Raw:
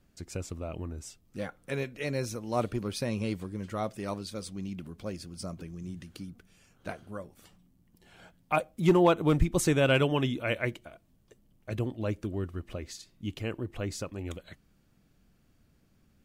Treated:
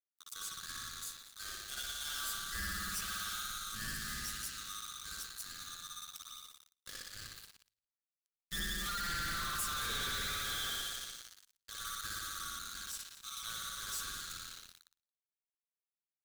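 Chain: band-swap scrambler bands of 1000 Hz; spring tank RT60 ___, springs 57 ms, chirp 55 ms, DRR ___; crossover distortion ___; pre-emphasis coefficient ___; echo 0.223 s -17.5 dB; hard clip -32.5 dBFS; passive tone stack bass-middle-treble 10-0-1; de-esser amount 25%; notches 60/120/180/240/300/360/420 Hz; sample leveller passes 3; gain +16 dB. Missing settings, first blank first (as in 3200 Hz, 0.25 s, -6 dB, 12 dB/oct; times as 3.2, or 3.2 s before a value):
2.1 s, -6.5 dB, -37 dBFS, 0.9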